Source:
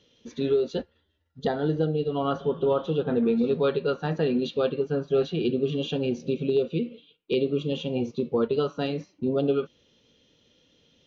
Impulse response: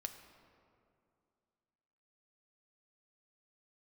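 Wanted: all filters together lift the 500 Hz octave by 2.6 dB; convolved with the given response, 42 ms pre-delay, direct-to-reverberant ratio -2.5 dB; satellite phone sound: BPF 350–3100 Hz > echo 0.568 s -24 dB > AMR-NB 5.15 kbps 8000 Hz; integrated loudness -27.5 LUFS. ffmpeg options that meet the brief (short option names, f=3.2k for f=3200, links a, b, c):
-filter_complex "[0:a]equalizer=f=500:t=o:g=5,asplit=2[a][b];[1:a]atrim=start_sample=2205,adelay=42[c];[b][c]afir=irnorm=-1:irlink=0,volume=5dB[d];[a][d]amix=inputs=2:normalize=0,highpass=350,lowpass=3.1k,aecho=1:1:568:0.0631,volume=-5.5dB" -ar 8000 -c:a libopencore_amrnb -b:a 5150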